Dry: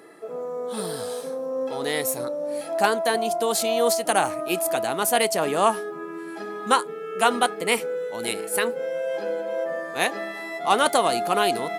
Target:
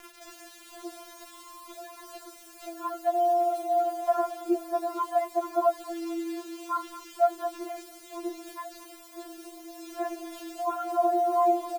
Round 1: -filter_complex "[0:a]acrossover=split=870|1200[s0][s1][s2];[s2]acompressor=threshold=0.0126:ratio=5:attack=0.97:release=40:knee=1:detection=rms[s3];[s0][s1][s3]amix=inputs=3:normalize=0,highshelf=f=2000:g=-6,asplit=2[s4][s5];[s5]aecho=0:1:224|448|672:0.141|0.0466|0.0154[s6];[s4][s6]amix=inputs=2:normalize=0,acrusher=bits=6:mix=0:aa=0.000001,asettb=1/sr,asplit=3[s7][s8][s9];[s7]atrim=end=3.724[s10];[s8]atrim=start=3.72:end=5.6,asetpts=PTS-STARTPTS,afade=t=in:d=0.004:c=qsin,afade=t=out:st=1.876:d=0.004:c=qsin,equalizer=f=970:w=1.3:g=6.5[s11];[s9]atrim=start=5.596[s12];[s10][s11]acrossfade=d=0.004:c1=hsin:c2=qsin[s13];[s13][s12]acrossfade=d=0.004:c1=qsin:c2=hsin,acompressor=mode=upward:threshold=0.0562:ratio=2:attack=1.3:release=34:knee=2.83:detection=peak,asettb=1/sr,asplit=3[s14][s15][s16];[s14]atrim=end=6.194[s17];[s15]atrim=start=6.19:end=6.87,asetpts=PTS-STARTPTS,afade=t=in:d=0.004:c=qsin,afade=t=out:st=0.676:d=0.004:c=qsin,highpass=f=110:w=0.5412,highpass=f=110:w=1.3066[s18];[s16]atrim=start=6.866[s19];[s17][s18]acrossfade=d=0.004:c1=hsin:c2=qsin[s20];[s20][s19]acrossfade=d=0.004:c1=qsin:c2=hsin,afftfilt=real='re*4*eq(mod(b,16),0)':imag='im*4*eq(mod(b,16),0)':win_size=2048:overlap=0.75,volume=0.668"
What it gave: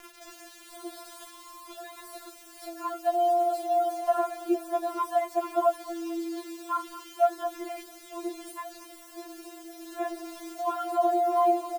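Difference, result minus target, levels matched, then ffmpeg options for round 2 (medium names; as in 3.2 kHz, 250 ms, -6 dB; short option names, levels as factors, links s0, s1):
compression: peak gain reduction -9 dB
-filter_complex "[0:a]acrossover=split=870|1200[s0][s1][s2];[s2]acompressor=threshold=0.00355:ratio=5:attack=0.97:release=40:knee=1:detection=rms[s3];[s0][s1][s3]amix=inputs=3:normalize=0,highshelf=f=2000:g=-6,asplit=2[s4][s5];[s5]aecho=0:1:224|448|672:0.141|0.0466|0.0154[s6];[s4][s6]amix=inputs=2:normalize=0,acrusher=bits=6:mix=0:aa=0.000001,asettb=1/sr,asplit=3[s7][s8][s9];[s7]atrim=end=3.724[s10];[s8]atrim=start=3.72:end=5.6,asetpts=PTS-STARTPTS,afade=t=in:d=0.004:c=qsin,afade=t=out:st=1.876:d=0.004:c=qsin,equalizer=f=970:w=1.3:g=6.5[s11];[s9]atrim=start=5.596[s12];[s10][s11]acrossfade=d=0.004:c1=hsin:c2=qsin[s13];[s13][s12]acrossfade=d=0.004:c1=qsin:c2=hsin,acompressor=mode=upward:threshold=0.0562:ratio=2:attack=1.3:release=34:knee=2.83:detection=peak,asettb=1/sr,asplit=3[s14][s15][s16];[s14]atrim=end=6.194[s17];[s15]atrim=start=6.19:end=6.87,asetpts=PTS-STARTPTS,afade=t=in:d=0.004:c=qsin,afade=t=out:st=0.676:d=0.004:c=qsin,highpass=f=110:w=0.5412,highpass=f=110:w=1.3066[s18];[s16]atrim=start=6.866[s19];[s17][s18]acrossfade=d=0.004:c1=hsin:c2=qsin[s20];[s20][s19]acrossfade=d=0.004:c1=qsin:c2=hsin,afftfilt=real='re*4*eq(mod(b,16),0)':imag='im*4*eq(mod(b,16),0)':win_size=2048:overlap=0.75,volume=0.668"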